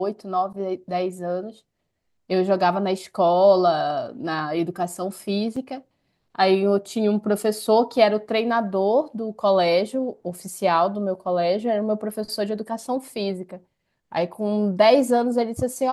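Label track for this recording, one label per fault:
5.560000	5.560000	gap 4.6 ms

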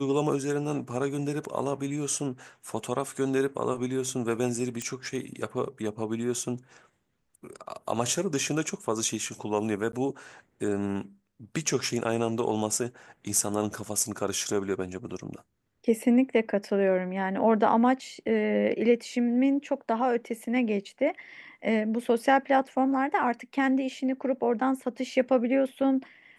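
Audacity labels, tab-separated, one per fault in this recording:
4.820000	4.820000	pop -19 dBFS
9.920000	9.930000	gap 12 ms

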